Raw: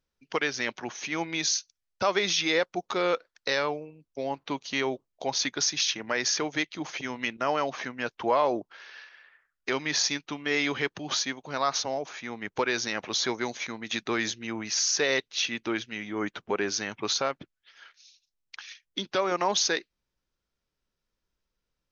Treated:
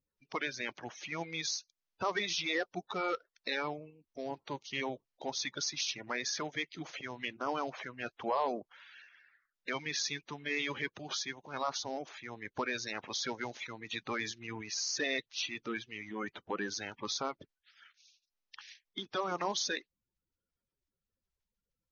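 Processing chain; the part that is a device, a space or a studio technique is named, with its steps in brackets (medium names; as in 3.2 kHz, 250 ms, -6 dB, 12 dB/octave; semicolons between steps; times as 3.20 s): clip after many re-uploads (low-pass 6.4 kHz 24 dB/octave; coarse spectral quantiser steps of 30 dB); trim -7.5 dB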